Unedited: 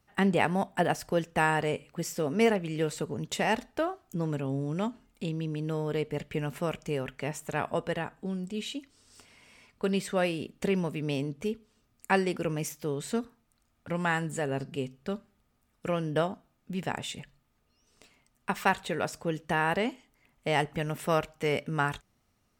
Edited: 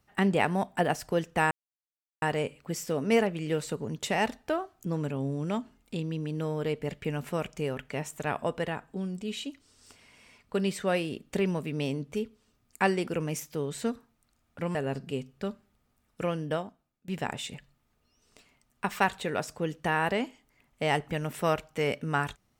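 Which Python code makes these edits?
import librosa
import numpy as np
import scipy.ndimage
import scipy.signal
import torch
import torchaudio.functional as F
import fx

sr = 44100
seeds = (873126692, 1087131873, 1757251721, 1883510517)

y = fx.edit(x, sr, fx.insert_silence(at_s=1.51, length_s=0.71),
    fx.cut(start_s=14.04, length_s=0.36),
    fx.fade_out_to(start_s=15.9, length_s=0.83, floor_db=-20.5), tone=tone)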